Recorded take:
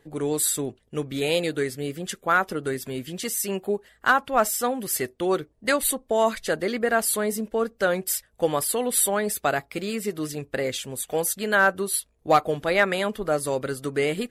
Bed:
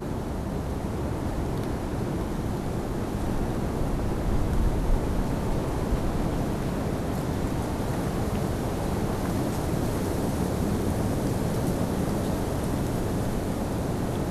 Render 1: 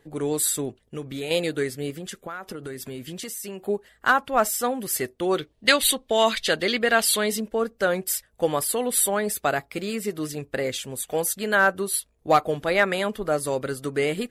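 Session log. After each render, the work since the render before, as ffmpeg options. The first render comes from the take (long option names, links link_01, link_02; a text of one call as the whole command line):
ffmpeg -i in.wav -filter_complex "[0:a]asettb=1/sr,asplit=3[link_01][link_02][link_03];[link_01]atrim=end=0.804[link_04];[link_02]atrim=start=0.8:end=1.31,asetpts=PTS-STARTPTS,afade=type=in:duration=0.004:curve=qsin,afade=type=out:start_time=0.506:duration=0.004:curve=qsin,acompressor=threshold=-30dB:ratio=2.5:attack=3.2:release=140:knee=1:detection=peak[link_05];[link_03]atrim=start=1.306[link_06];[link_04][link_05]acrossfade=duration=0.004:curve1=hsin:curve2=qsin[link_07];[link_07][link_06]acrossfade=duration=0.004:curve1=qsin:curve2=hsin,asettb=1/sr,asplit=3[link_08][link_09][link_10];[link_08]atrim=end=1.904[link_11];[link_09]atrim=start=1.9:end=3.6,asetpts=PTS-STARTPTS,afade=type=in:duration=0.004:curve=qsin,afade=type=out:start_time=1.696:duration=0.004:curve=qsin,acompressor=threshold=-30dB:ratio=12:attack=3.2:release=140:knee=1:detection=peak[link_12];[link_10]atrim=start=3.596[link_13];[link_11][link_12]acrossfade=duration=0.004:curve1=hsin:curve2=qsin[link_14];[link_14][link_13]acrossfade=duration=0.004:curve1=qsin:curve2=hsin,asettb=1/sr,asplit=3[link_15][link_16][link_17];[link_15]atrim=end=5.374[link_18];[link_16]atrim=start=5.37:end=7.4,asetpts=PTS-STARTPTS,afade=type=in:duration=0.004:curve=qsin,afade=type=out:start_time=2.026:duration=0.004:curve=qsin,equalizer=frequency=3400:width=0.97:gain=13.5[link_19];[link_17]atrim=start=7.396[link_20];[link_18][link_19]acrossfade=duration=0.004:curve1=hsin:curve2=qsin[link_21];[link_21][link_20]acrossfade=duration=0.004:curve1=qsin:curve2=hsin" out.wav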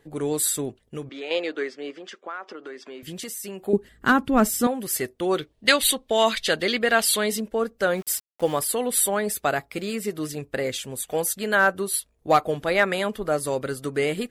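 ffmpeg -i in.wav -filter_complex "[0:a]asettb=1/sr,asplit=3[link_01][link_02][link_03];[link_01]atrim=end=1.094[link_04];[link_02]atrim=start=1.09:end=3.03,asetpts=PTS-STARTPTS,afade=type=in:duration=0.004:curve=qsin,afade=type=out:start_time=1.936:duration=0.004:curve=qsin,highpass=frequency=310:width=0.5412,highpass=frequency=310:width=1.3066,equalizer=frequency=450:width_type=q:width=4:gain=-3,equalizer=frequency=1100:width_type=q:width=4:gain=4,equalizer=frequency=4000:width_type=q:width=4:gain=-6,lowpass=frequency=5200:width=0.5412,lowpass=frequency=5200:width=1.3066[link_05];[link_03]atrim=start=3.026[link_06];[link_04][link_05]acrossfade=duration=0.004:curve1=hsin:curve2=qsin[link_07];[link_07][link_06]acrossfade=duration=0.004:curve1=qsin:curve2=hsin,asettb=1/sr,asplit=3[link_08][link_09][link_10];[link_08]atrim=end=3.734[link_11];[link_09]atrim=start=3.73:end=4.67,asetpts=PTS-STARTPTS,afade=type=in:duration=0.004:curve=qsin,afade=type=out:start_time=0.936:duration=0.004:curve=qsin,lowshelf=frequency=430:width_type=q:width=1.5:gain=11[link_12];[link_10]atrim=start=4.666[link_13];[link_11][link_12]acrossfade=duration=0.004:curve1=hsin:curve2=qsin[link_14];[link_14][link_13]acrossfade=duration=0.004:curve1=qsin:curve2=hsin,asettb=1/sr,asplit=3[link_15][link_16][link_17];[link_15]atrim=end=7.974[link_18];[link_16]atrim=start=7.97:end=8.59,asetpts=PTS-STARTPTS,afade=type=in:duration=0.004:curve=qsin,afade=type=out:start_time=0.616:duration=0.004:curve=qsin,aeval=exprs='val(0)*gte(abs(val(0)),0.01)':channel_layout=same[link_19];[link_17]atrim=start=8.586[link_20];[link_18][link_19]acrossfade=duration=0.004:curve1=hsin:curve2=qsin[link_21];[link_21][link_20]acrossfade=duration=0.004:curve1=qsin:curve2=hsin" out.wav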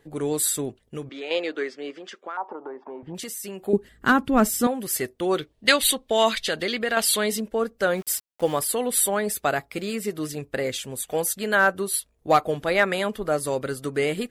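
ffmpeg -i in.wav -filter_complex "[0:a]asettb=1/sr,asplit=3[link_01][link_02][link_03];[link_01]atrim=end=2.374[link_04];[link_02]atrim=start=2.37:end=3.15,asetpts=PTS-STARTPTS,afade=type=in:duration=0.004:curve=qsin,afade=type=out:start_time=0.776:duration=0.004:curve=qsin,lowpass=frequency=890:width_type=q:width=11[link_05];[link_03]atrim=start=3.146[link_06];[link_04][link_05]acrossfade=duration=0.004:curve1=hsin:curve2=qsin[link_07];[link_07][link_06]acrossfade=duration=0.004:curve1=qsin:curve2=hsin,asettb=1/sr,asplit=3[link_08][link_09][link_10];[link_08]atrim=end=6.384[link_11];[link_09]atrim=start=6.38:end=6.97,asetpts=PTS-STARTPTS,afade=type=in:duration=0.004:curve=qsin,afade=type=out:start_time=0.586:duration=0.004:curve=qsin,acompressor=threshold=-23dB:ratio=2:attack=3.2:release=140:knee=1:detection=peak[link_12];[link_10]atrim=start=6.966[link_13];[link_11][link_12]acrossfade=duration=0.004:curve1=hsin:curve2=qsin[link_14];[link_14][link_13]acrossfade=duration=0.004:curve1=qsin:curve2=hsin" out.wav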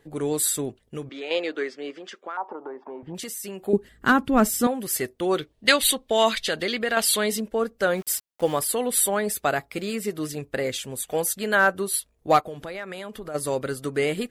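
ffmpeg -i in.wav -filter_complex "[0:a]asplit=3[link_01][link_02][link_03];[link_01]afade=type=out:start_time=12.4:duration=0.02[link_04];[link_02]acompressor=threshold=-33dB:ratio=4:attack=3.2:release=140:knee=1:detection=peak,afade=type=in:start_time=12.4:duration=0.02,afade=type=out:start_time=13.34:duration=0.02[link_05];[link_03]afade=type=in:start_time=13.34:duration=0.02[link_06];[link_04][link_05][link_06]amix=inputs=3:normalize=0" out.wav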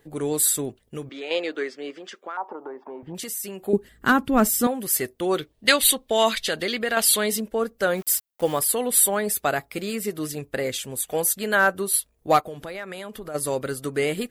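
ffmpeg -i in.wav -af "highshelf=frequency=12000:gain=10.5" out.wav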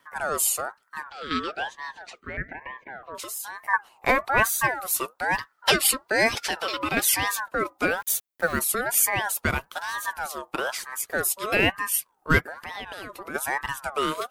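ffmpeg -i in.wav -filter_complex "[0:a]acrossover=split=160|1100|4800[link_01][link_02][link_03][link_04];[link_02]crystalizer=i=7:c=0[link_05];[link_01][link_05][link_03][link_04]amix=inputs=4:normalize=0,aeval=exprs='val(0)*sin(2*PI*1100*n/s+1100*0.3/1.1*sin(2*PI*1.1*n/s))':channel_layout=same" out.wav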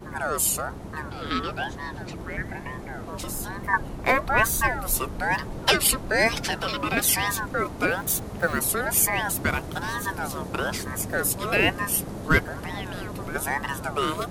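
ffmpeg -i in.wav -i bed.wav -filter_complex "[1:a]volume=-8dB[link_01];[0:a][link_01]amix=inputs=2:normalize=0" out.wav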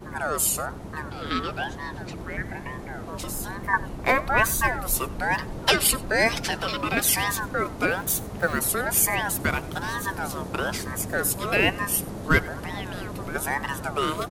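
ffmpeg -i in.wav -filter_complex "[0:a]asplit=2[link_01][link_02];[link_02]adelay=93.29,volume=-21dB,highshelf=frequency=4000:gain=-2.1[link_03];[link_01][link_03]amix=inputs=2:normalize=0" out.wav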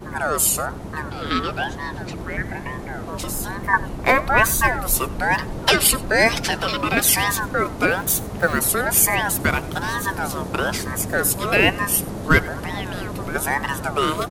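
ffmpeg -i in.wav -af "volume=5dB,alimiter=limit=-1dB:level=0:latency=1" out.wav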